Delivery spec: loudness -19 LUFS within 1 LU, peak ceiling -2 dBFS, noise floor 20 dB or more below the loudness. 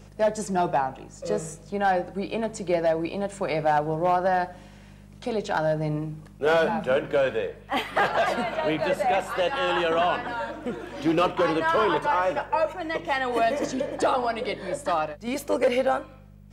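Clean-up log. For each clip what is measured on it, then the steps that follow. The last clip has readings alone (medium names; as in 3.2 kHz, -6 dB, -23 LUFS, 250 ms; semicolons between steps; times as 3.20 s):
clipped samples 0.4%; clipping level -15.0 dBFS; hum 50 Hz; highest harmonic 200 Hz; hum level -45 dBFS; loudness -25.5 LUFS; peak level -15.0 dBFS; loudness target -19.0 LUFS
-> clip repair -15 dBFS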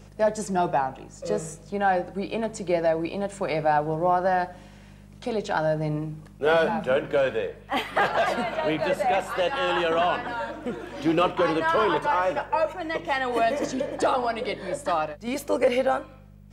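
clipped samples 0.0%; hum 50 Hz; highest harmonic 200 Hz; hum level -45 dBFS
-> de-hum 50 Hz, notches 4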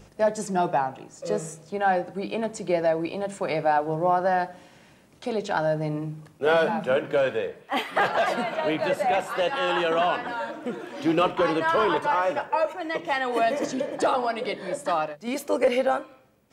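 hum not found; loudness -25.5 LUFS; peak level -10.5 dBFS; loudness target -19.0 LUFS
-> trim +6.5 dB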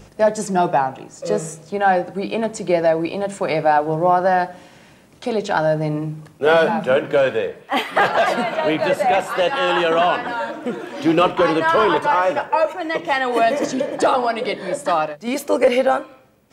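loudness -19.0 LUFS; peak level -4.0 dBFS; noise floor -48 dBFS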